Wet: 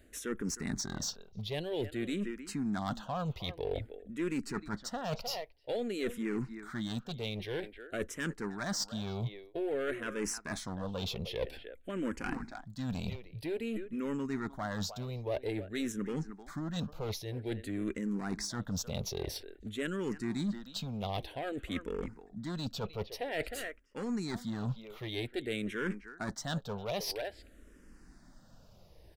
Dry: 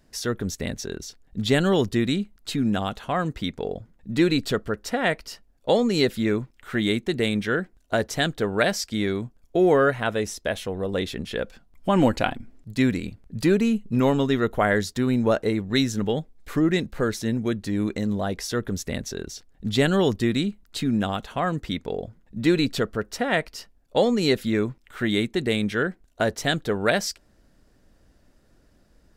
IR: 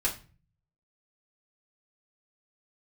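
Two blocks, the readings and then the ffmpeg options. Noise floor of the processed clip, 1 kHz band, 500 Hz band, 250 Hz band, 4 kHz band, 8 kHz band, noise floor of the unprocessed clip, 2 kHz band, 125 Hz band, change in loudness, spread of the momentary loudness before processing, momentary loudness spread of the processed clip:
-58 dBFS, -13.5 dB, -14.0 dB, -13.0 dB, -11.0 dB, -6.5 dB, -60 dBFS, -14.0 dB, -11.0 dB, -13.0 dB, 11 LU, 5 LU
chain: -filter_complex "[0:a]asplit=2[a][b];[b]adelay=310,highpass=300,lowpass=3.4k,asoftclip=type=hard:threshold=-15dB,volume=-17dB[c];[a][c]amix=inputs=2:normalize=0,areverse,acompressor=threshold=-33dB:ratio=16,areverse,aeval=exprs='clip(val(0),-1,0.015)':c=same,asplit=2[d][e];[e]afreqshift=-0.51[f];[d][f]amix=inputs=2:normalize=1,volume=4.5dB"

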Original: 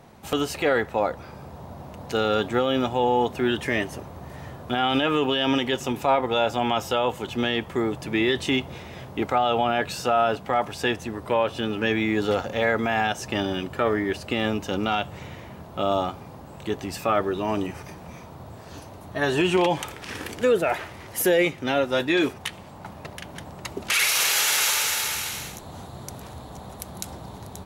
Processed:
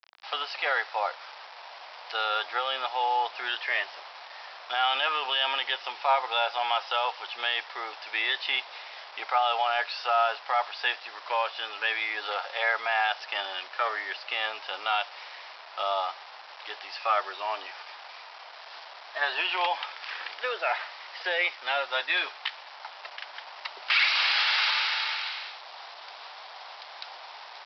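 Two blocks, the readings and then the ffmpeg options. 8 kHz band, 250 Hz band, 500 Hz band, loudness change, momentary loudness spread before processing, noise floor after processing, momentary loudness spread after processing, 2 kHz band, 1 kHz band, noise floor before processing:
under -25 dB, under -30 dB, -11.5 dB, -4.0 dB, 19 LU, -46 dBFS, 18 LU, 0.0 dB, -1.5 dB, -43 dBFS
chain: -af "aresample=11025,acrusher=bits=6:mix=0:aa=0.000001,aresample=44100,highpass=f=750:w=0.5412,highpass=f=750:w=1.3066"

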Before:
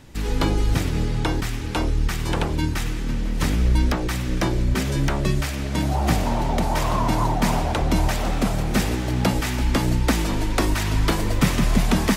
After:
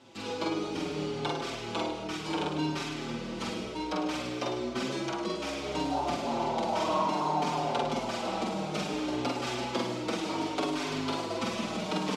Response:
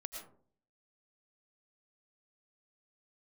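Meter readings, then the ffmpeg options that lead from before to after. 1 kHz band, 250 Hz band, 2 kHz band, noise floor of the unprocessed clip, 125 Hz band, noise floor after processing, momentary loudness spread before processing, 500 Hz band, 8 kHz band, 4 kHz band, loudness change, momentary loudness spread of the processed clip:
-4.5 dB, -9.0 dB, -9.5 dB, -26 dBFS, -19.0 dB, -38 dBFS, 4 LU, -4.0 dB, -11.5 dB, -6.0 dB, -9.5 dB, 5 LU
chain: -filter_complex "[0:a]equalizer=f=1.8k:t=o:w=0.49:g=-10.5,alimiter=limit=-15dB:level=0:latency=1:release=404,highpass=300,lowpass=5k,asplit=2[a][b];[b]adelay=46,volume=-2dB[c];[a][c]amix=inputs=2:normalize=0,asplit=2[d][e];[1:a]atrim=start_sample=2205,adelay=104[f];[e][f]afir=irnorm=-1:irlink=0,volume=-4dB[g];[d][g]amix=inputs=2:normalize=0,asplit=2[h][i];[i]adelay=5.5,afreqshift=-0.62[j];[h][j]amix=inputs=2:normalize=1"

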